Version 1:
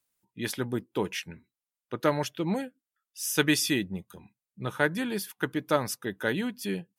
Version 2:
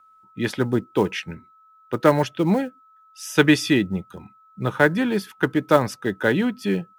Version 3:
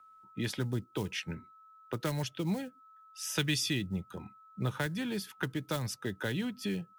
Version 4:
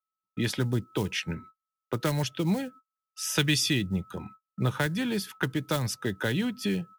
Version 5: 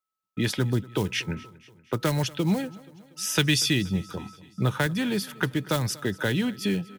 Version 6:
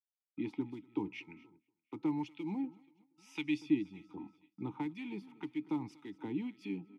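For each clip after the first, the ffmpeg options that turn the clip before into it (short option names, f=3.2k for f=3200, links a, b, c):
-filter_complex "[0:a]aemphasis=mode=reproduction:type=75fm,aeval=exprs='val(0)+0.001*sin(2*PI*1300*n/s)':c=same,acrossover=split=410|1000|3300[a][b][c][d];[b]acrusher=bits=5:mode=log:mix=0:aa=0.000001[e];[a][e][c][d]amix=inputs=4:normalize=0,volume=8.5dB"
-filter_complex "[0:a]acrossover=split=140|3000[a][b][c];[b]acompressor=threshold=-31dB:ratio=10[d];[a][d][c]amix=inputs=3:normalize=0,volume=-3.5dB"
-af "agate=range=-41dB:threshold=-52dB:ratio=16:detection=peak,volume=6dB"
-af "aecho=1:1:238|476|714|952:0.0841|0.0471|0.0264|0.0148,volume=2.5dB"
-filter_complex "[0:a]agate=range=-14dB:threshold=-48dB:ratio=16:detection=peak,acrossover=split=1400[a][b];[a]aeval=exprs='val(0)*(1-0.7/2+0.7/2*cos(2*PI*1.9*n/s))':c=same[c];[b]aeval=exprs='val(0)*(1-0.7/2-0.7/2*cos(2*PI*1.9*n/s))':c=same[d];[c][d]amix=inputs=2:normalize=0,asplit=3[e][f][g];[e]bandpass=f=300:t=q:w=8,volume=0dB[h];[f]bandpass=f=870:t=q:w=8,volume=-6dB[i];[g]bandpass=f=2.24k:t=q:w=8,volume=-9dB[j];[h][i][j]amix=inputs=3:normalize=0,volume=1.5dB"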